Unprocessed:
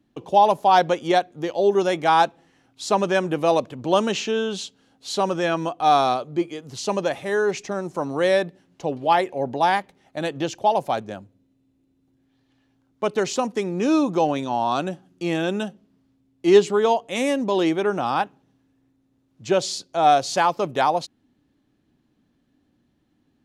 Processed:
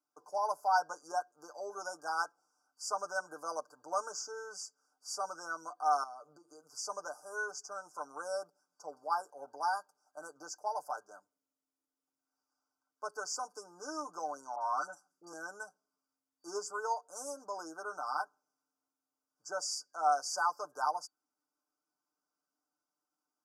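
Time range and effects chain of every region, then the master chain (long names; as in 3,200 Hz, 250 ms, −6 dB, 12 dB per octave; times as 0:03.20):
0:06.03–0:06.67: low-shelf EQ 410 Hz +8 dB + downward compressor 16 to 1, threshold −27 dBFS
0:14.55–0:15.33: dynamic equaliser 1,300 Hz, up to +5 dB, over −37 dBFS, Q 1.1 + all-pass dispersion highs, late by 60 ms, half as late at 1,500 Hz
whole clip: brick-wall band-stop 1,600–4,600 Hz; high-pass filter 1,200 Hz 12 dB per octave; comb filter 6.7 ms, depth 78%; level −8.5 dB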